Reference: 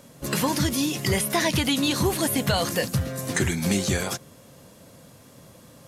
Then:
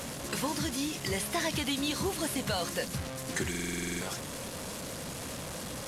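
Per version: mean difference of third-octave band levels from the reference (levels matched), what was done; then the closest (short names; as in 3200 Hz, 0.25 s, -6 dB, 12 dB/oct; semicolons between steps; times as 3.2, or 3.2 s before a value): 8.0 dB: delta modulation 64 kbps, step -24.5 dBFS; band noise 56–180 Hz -38 dBFS; bell 110 Hz -6 dB 1.2 oct; stuck buffer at 3.5, samples 2048, times 10; gain -8 dB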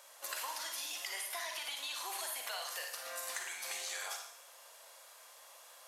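15.0 dB: HPF 730 Hz 24 dB/oct; compressor 10:1, threshold -36 dBFS, peak gain reduction 15 dB; Schroeder reverb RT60 0.7 s, DRR 2.5 dB; gain -3.5 dB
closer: first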